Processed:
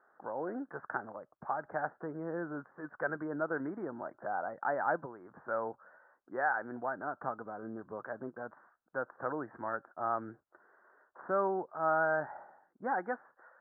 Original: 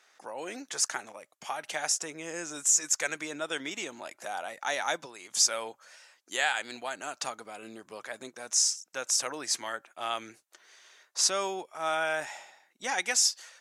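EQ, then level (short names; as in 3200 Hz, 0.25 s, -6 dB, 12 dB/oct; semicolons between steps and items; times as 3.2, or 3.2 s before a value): steep low-pass 1600 Hz 72 dB/oct; low shelf 180 Hz +11.5 dB; 0.0 dB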